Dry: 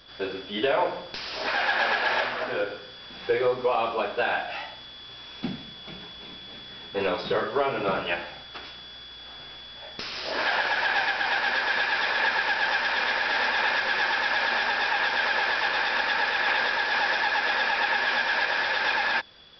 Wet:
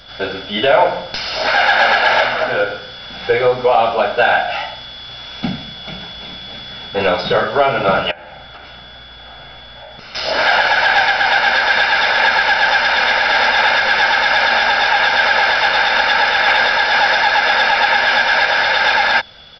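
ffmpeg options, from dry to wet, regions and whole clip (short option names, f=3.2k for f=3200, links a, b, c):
-filter_complex "[0:a]asettb=1/sr,asplit=3[a][b][c];[a]atrim=end=8.114[d];[b]atrim=start=8.11:end=10.15,asetpts=PTS-STARTPTS,afade=t=in:d=0.004:c=qsin,afade=t=out:st=2.036:d=0.004:c=qsin,lowpass=f=1.8k:p=1,bandreject=f=50:t=h:w=6,bandreject=f=100:t=h:w=6,bandreject=f=150:t=h:w=6,bandreject=f=200:t=h:w=6,bandreject=f=250:t=h:w=6,bandreject=f=300:t=h:w=6,bandreject=f=350:t=h:w=6,bandreject=f=400:t=h:w=6,bandreject=f=450:t=h:w=6,acompressor=threshold=-43dB:ratio=10:attack=3.2:release=140:knee=1:detection=peak[e];[c]atrim=start=10.146[f];[d][e]acrossfade=d=0.004:c1=hsin:c2=qsin[g];[g][f]acrossfade=d=0.004:c1=qsin:c2=hsin,aecho=1:1:1.4:0.53,acontrast=51,volume=5dB"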